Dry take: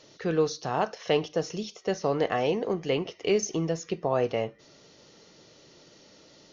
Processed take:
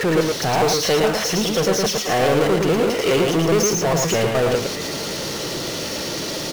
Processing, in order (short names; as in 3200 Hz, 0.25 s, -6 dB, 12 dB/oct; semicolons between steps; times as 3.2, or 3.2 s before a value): slices in reverse order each 0.207 s, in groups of 2; power-law curve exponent 0.35; echo 0.113 s -3.5 dB